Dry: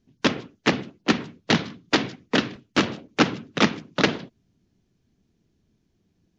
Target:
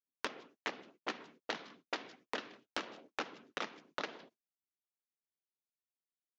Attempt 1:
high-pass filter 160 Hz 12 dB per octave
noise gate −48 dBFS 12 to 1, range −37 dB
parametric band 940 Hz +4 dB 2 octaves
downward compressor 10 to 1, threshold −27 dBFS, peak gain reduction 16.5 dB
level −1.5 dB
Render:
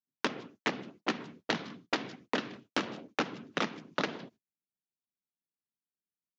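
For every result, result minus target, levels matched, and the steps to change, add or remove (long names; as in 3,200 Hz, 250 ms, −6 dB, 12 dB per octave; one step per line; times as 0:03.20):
125 Hz band +10.0 dB; downward compressor: peak gain reduction −6.5 dB
change: high-pass filter 390 Hz 12 dB per octave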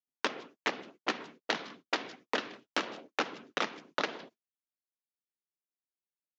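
downward compressor: peak gain reduction −8 dB
change: downward compressor 10 to 1, threshold −36 dBFS, peak gain reduction 23 dB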